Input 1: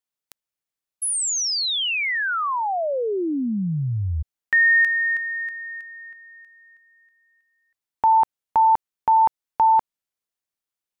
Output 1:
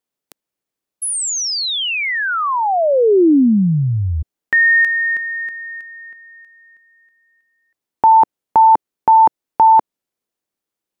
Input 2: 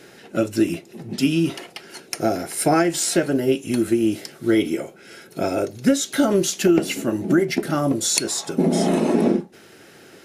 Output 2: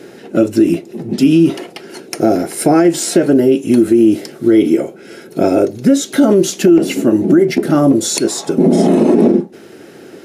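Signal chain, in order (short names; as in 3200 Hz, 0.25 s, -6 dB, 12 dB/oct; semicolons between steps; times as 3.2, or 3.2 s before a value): bell 320 Hz +10.5 dB 2.3 oct; limiter -5 dBFS; gain +3 dB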